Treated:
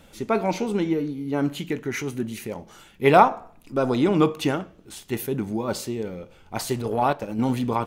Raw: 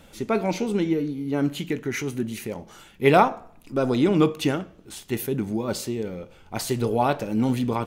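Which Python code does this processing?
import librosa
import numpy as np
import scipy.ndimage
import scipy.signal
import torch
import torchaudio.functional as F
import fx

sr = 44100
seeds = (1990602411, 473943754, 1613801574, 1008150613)

y = fx.transient(x, sr, attack_db=-11, sustain_db=-7, at=(6.76, 7.39))
y = fx.dynamic_eq(y, sr, hz=940.0, q=1.1, threshold_db=-37.0, ratio=4.0, max_db=5)
y = y * librosa.db_to_amplitude(-1.0)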